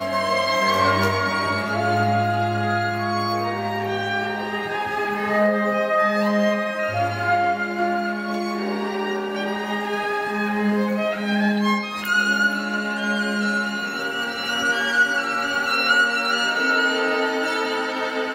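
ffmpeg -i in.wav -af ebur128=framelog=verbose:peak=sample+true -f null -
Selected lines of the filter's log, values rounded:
Integrated loudness:
  I:         -21.4 LUFS
  Threshold: -31.4 LUFS
Loudness range:
  LRA:         4.0 LU
  Threshold: -41.6 LUFS
  LRA low:   -23.6 LUFS
  LRA high:  -19.6 LUFS
Sample peak:
  Peak:       -6.3 dBFS
True peak:
  Peak:       -6.3 dBFS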